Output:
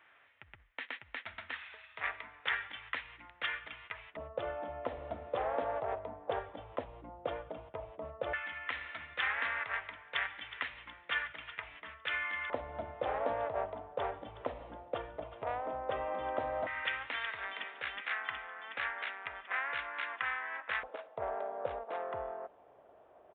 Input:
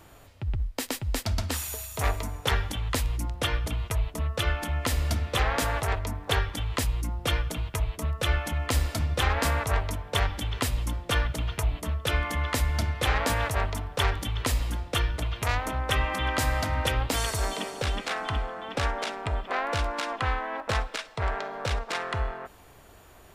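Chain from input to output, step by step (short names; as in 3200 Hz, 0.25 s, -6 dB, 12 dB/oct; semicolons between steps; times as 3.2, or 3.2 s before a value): LFO band-pass square 0.12 Hz 610–1900 Hz; downsampling 8000 Hz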